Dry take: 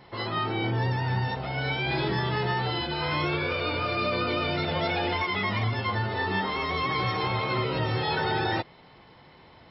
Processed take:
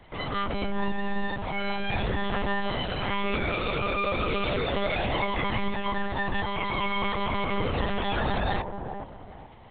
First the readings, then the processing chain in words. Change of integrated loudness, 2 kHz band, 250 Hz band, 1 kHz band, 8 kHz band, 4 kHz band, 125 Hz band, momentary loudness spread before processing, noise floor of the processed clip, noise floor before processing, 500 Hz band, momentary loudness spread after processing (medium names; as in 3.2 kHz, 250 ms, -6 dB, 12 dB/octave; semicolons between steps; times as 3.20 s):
-1.5 dB, -1.5 dB, +0.5 dB, -1.0 dB, no reading, -2.5 dB, -5.0 dB, 2 LU, -45 dBFS, -53 dBFS, 0.0 dB, 5 LU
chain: on a send: feedback echo behind a band-pass 423 ms, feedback 33%, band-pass 510 Hz, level -6 dB; on the sum: monotone LPC vocoder at 8 kHz 200 Hz